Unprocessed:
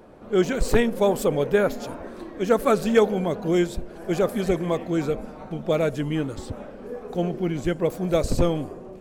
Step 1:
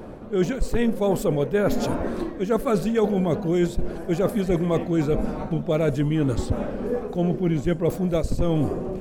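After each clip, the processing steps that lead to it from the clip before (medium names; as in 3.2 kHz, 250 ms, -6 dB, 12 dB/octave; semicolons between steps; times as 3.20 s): bass shelf 330 Hz +7.5 dB; reverse; compression 6:1, threshold -26 dBFS, peak gain reduction 17 dB; reverse; trim +7 dB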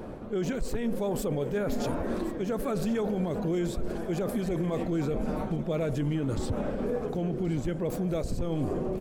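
peak limiter -20.5 dBFS, peak gain reduction 10.5 dB; feedback delay 1077 ms, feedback 38%, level -15.5 dB; on a send at -20.5 dB: reverberation RT60 4.6 s, pre-delay 223 ms; on the sum: trim -1.5 dB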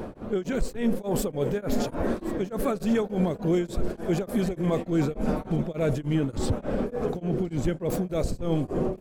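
tremolo of two beating tones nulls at 3.4 Hz; trim +6 dB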